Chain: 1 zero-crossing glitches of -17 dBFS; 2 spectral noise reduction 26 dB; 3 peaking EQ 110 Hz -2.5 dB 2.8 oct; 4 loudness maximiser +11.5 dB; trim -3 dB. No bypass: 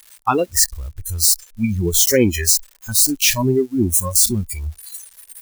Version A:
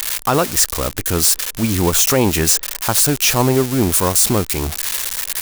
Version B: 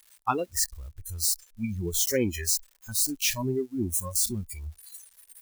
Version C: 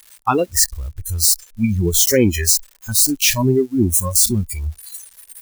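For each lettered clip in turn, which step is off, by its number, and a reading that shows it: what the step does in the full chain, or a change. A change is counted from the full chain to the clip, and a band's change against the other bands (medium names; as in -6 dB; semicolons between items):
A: 2, 1 kHz band +3.0 dB; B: 4, crest factor change +4.0 dB; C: 3, momentary loudness spread change -1 LU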